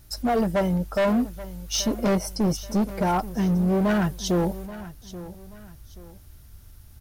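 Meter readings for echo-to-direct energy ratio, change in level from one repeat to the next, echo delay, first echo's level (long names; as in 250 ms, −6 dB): −15.5 dB, −9.0 dB, 831 ms, −16.0 dB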